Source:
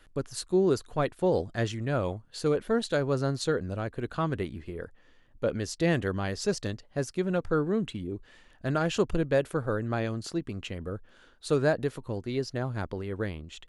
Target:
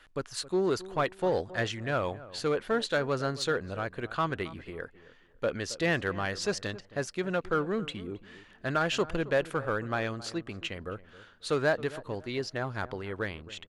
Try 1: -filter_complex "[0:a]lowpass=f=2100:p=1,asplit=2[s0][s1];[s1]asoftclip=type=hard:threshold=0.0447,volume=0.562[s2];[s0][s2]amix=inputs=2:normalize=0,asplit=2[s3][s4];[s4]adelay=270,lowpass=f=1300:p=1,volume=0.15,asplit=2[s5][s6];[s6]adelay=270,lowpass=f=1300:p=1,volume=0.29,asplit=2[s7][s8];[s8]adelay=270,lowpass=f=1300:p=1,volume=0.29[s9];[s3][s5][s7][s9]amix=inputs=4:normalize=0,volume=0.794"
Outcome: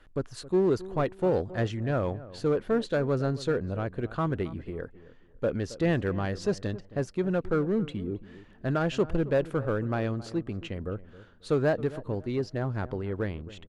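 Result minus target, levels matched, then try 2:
1 kHz band -4.5 dB
-filter_complex "[0:a]lowpass=f=2100:p=1,tiltshelf=f=730:g=-8,asplit=2[s0][s1];[s1]asoftclip=type=hard:threshold=0.0447,volume=0.562[s2];[s0][s2]amix=inputs=2:normalize=0,asplit=2[s3][s4];[s4]adelay=270,lowpass=f=1300:p=1,volume=0.15,asplit=2[s5][s6];[s6]adelay=270,lowpass=f=1300:p=1,volume=0.29,asplit=2[s7][s8];[s8]adelay=270,lowpass=f=1300:p=1,volume=0.29[s9];[s3][s5][s7][s9]amix=inputs=4:normalize=0,volume=0.794"

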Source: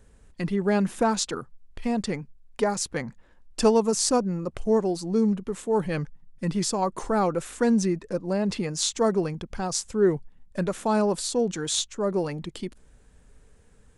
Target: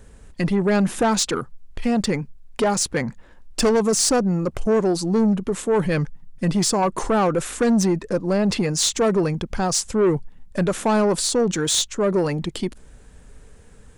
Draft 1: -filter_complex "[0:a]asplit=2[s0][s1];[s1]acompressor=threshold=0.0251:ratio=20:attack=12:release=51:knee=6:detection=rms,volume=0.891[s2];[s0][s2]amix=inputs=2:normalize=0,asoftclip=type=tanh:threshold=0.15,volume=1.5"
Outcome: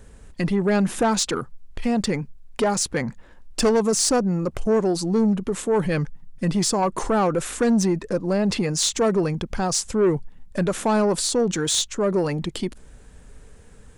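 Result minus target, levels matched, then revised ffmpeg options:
compression: peak gain reduction +9 dB
-filter_complex "[0:a]asplit=2[s0][s1];[s1]acompressor=threshold=0.075:ratio=20:attack=12:release=51:knee=6:detection=rms,volume=0.891[s2];[s0][s2]amix=inputs=2:normalize=0,asoftclip=type=tanh:threshold=0.15,volume=1.5"

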